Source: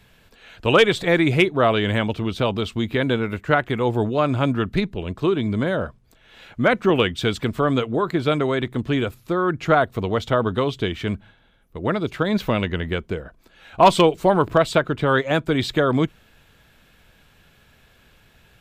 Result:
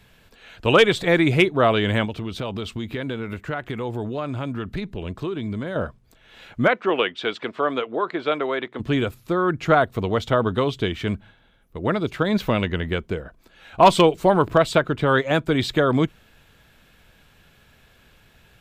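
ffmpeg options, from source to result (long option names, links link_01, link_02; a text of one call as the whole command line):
ffmpeg -i in.wav -filter_complex "[0:a]asettb=1/sr,asplit=3[link_01][link_02][link_03];[link_01]atrim=end=2.054[link_04];[link_02]atrim=start=2.05:end=5.76,asetpts=PTS-STARTPTS,afade=type=in:duration=0.004:curve=qsin,afade=type=out:start_time=3.706:duration=0.004:curve=qsin,acompressor=threshold=-26dB:ratio=3:attack=3.2:release=140:knee=1:detection=peak[link_05];[link_03]atrim=start=5.756[link_06];[link_04][link_05]acrossfade=duration=0.004:curve1=hsin:curve2=qsin[link_07];[link_07][link_06]acrossfade=duration=0.004:curve1=qsin:curve2=hsin,asplit=3[link_08][link_09][link_10];[link_08]afade=type=out:start_time=6.67:duration=0.02[link_11];[link_09]highpass=410,lowpass=3500,afade=type=in:start_time=6.67:duration=0.02,afade=type=out:start_time=8.79:duration=0.02[link_12];[link_10]afade=type=in:start_time=8.79:duration=0.02[link_13];[link_11][link_12][link_13]amix=inputs=3:normalize=0" out.wav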